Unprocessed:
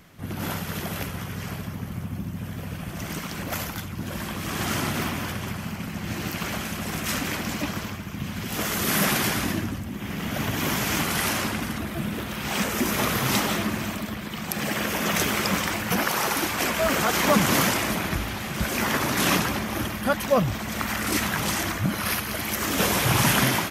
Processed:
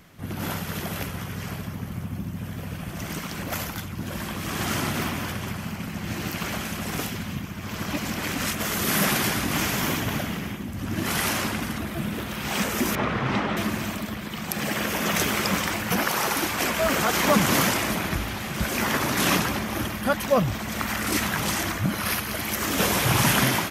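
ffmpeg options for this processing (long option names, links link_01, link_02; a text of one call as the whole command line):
ffmpeg -i in.wav -filter_complex "[0:a]asettb=1/sr,asplit=3[link_01][link_02][link_03];[link_01]atrim=end=12.954[link_04];[link_02]atrim=start=12.95:end=13.57,asetpts=PTS-STARTPTS,afade=type=in:duration=0.004:curve=qsin,afade=type=out:start_time=0.616:duration=0.004:curve=qsin,lowpass=2300[link_05];[link_03]atrim=start=13.566[link_06];[link_04][link_05]acrossfade=duration=0.004:curve1=hsin:curve2=qsin[link_07];[link_07][link_06]acrossfade=duration=0.004:curve1=qsin:curve2=hsin,asplit=5[link_08][link_09][link_10][link_11][link_12];[link_08]atrim=end=6.992[link_13];[link_09]atrim=start=6.988:end=8.602,asetpts=PTS-STARTPTS,areverse[link_14];[link_10]atrim=start=8.598:end=9.512[link_15];[link_11]atrim=start=9.508:end=11.062,asetpts=PTS-STARTPTS,areverse[link_16];[link_12]atrim=start=11.058[link_17];[link_13][link_14]acrossfade=duration=0.004:curve1=hsin:curve2=hsin[link_18];[link_18][link_15]acrossfade=duration=0.004:curve1=hsin:curve2=hsin[link_19];[link_19][link_16]acrossfade=duration=0.004:curve1=hsin:curve2=hsin[link_20];[link_20][link_17]acrossfade=duration=0.004:curve1=hsin:curve2=hsin" out.wav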